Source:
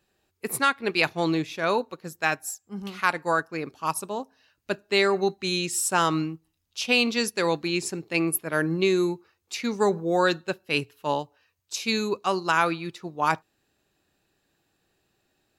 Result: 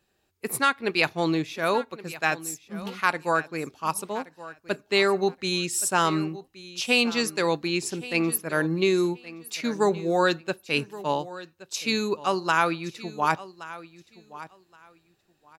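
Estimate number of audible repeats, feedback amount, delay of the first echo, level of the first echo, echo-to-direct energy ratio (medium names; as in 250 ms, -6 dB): 2, 19%, 1122 ms, -17.0 dB, -17.0 dB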